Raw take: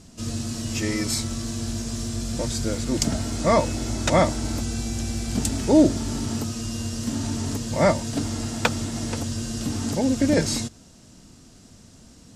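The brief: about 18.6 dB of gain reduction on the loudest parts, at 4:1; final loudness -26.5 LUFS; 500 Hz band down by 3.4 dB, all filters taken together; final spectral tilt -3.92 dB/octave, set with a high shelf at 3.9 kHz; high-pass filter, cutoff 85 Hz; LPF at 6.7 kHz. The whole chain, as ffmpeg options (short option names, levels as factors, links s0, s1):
-af "highpass=85,lowpass=6700,equalizer=f=500:t=o:g=-4.5,highshelf=f=3900:g=6,acompressor=threshold=0.0158:ratio=4,volume=3.35"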